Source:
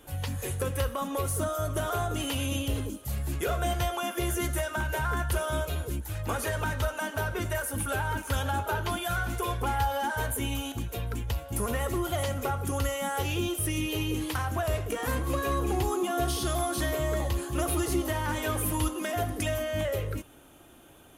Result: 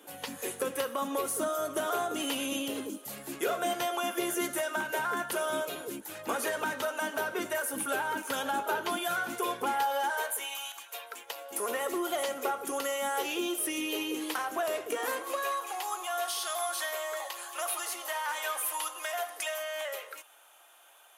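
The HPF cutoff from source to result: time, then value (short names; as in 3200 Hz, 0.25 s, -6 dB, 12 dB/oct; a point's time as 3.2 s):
HPF 24 dB/oct
9.66 s 230 Hz
10.72 s 890 Hz
11.76 s 310 Hz
14.97 s 310 Hz
15.61 s 700 Hz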